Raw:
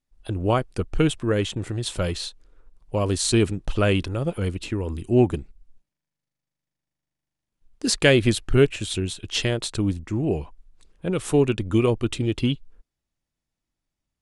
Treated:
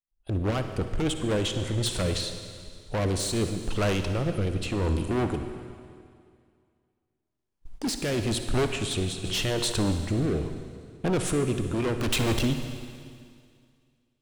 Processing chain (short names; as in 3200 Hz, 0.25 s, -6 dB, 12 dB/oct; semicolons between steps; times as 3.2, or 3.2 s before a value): recorder AGC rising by 6.5 dB/s; gate -40 dBFS, range -20 dB; bell 900 Hz +4.5 dB 0.8 oct; overloaded stage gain 22 dB; 12–12.45 sample leveller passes 5; rotary speaker horn 8 Hz, later 0.85 Hz, at 1.8; on a send at -7 dB: reverb RT60 2.2 s, pre-delay 48 ms; 9.24–9.72 on the sum: fast leveller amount 50%